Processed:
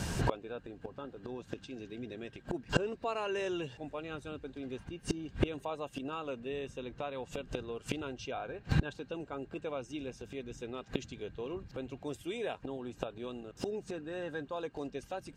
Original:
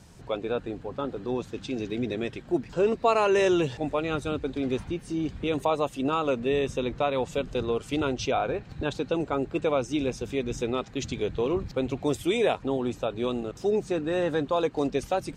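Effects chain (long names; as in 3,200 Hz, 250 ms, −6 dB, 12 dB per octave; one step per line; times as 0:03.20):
hollow resonant body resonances 1,600/2,800 Hz, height 11 dB, ringing for 45 ms
gate with flip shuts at −29 dBFS, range −29 dB
level +15.5 dB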